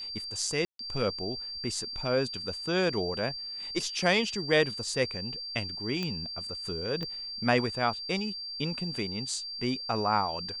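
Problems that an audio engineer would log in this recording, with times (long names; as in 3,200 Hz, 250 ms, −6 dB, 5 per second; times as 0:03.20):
whistle 4,700 Hz −36 dBFS
0:00.65–0:00.79: drop-out 143 ms
0:06.03: click −19 dBFS
0:07.03: click −23 dBFS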